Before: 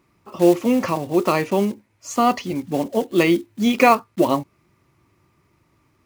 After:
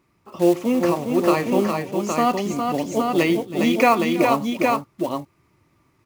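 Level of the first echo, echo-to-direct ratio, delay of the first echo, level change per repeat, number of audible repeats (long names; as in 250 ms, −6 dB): −20.0 dB, −1.5 dB, 95 ms, repeats not evenly spaced, 4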